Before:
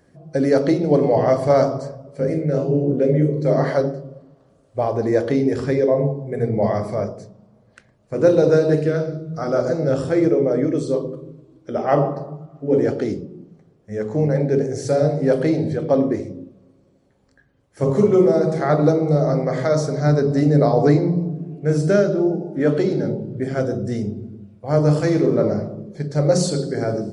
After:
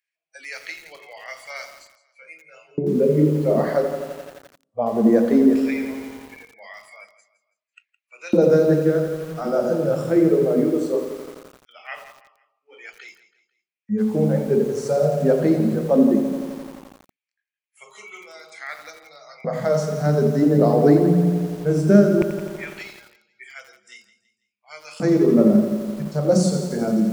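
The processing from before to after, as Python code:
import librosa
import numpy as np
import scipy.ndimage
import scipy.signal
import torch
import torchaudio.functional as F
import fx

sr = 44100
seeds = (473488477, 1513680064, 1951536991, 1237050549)

p1 = fx.noise_reduce_blind(x, sr, reduce_db=20)
p2 = fx.filter_lfo_highpass(p1, sr, shape='square', hz=0.18, low_hz=220.0, high_hz=2400.0, q=6.7)
p3 = fx.dynamic_eq(p2, sr, hz=3200.0, q=1.2, threshold_db=-44.0, ratio=4.0, max_db=-5)
p4 = p3 + fx.echo_feedback(p3, sr, ms=165, feedback_pct=39, wet_db=-15.5, dry=0)
p5 = fx.echo_crushed(p4, sr, ms=86, feedback_pct=80, bits=6, wet_db=-10.5)
y = p5 * librosa.db_to_amplitude(-2.5)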